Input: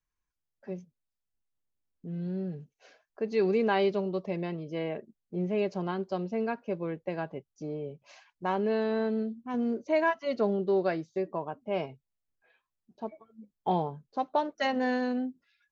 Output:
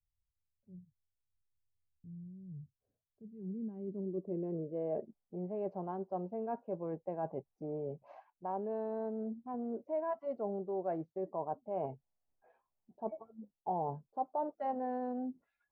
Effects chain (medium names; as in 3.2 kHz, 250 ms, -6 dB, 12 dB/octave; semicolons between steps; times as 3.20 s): treble shelf 4.2 kHz +7 dB; reverse; compression 5:1, threshold -39 dBFS, peak gain reduction 16.5 dB; reverse; low-pass sweep 100 Hz -> 790 Hz, 2.83–5.12 s